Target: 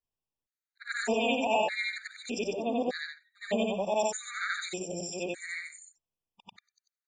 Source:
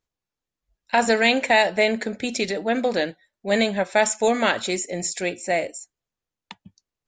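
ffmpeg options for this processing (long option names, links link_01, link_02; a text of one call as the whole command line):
ffmpeg -i in.wav -af "afftfilt=real='re':imag='-im':win_size=8192:overlap=0.75,afftfilt=real='re*gt(sin(2*PI*0.82*pts/sr)*(1-2*mod(floor(b*sr/1024/1200),2)),0)':imag='im*gt(sin(2*PI*0.82*pts/sr)*(1-2*mod(floor(b*sr/1024/1200),2)),0)':win_size=1024:overlap=0.75,volume=-2.5dB" out.wav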